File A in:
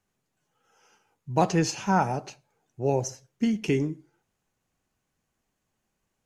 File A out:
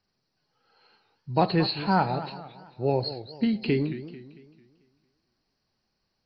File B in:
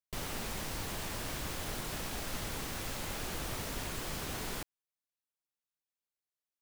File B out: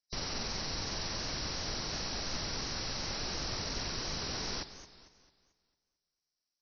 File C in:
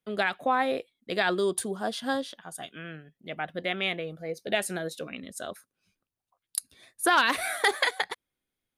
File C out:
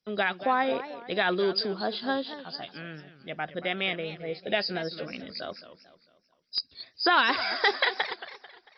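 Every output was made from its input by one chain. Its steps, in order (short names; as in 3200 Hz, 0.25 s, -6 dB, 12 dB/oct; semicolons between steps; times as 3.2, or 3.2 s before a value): nonlinear frequency compression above 3800 Hz 4:1; warbling echo 0.223 s, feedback 42%, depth 200 cents, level -13.5 dB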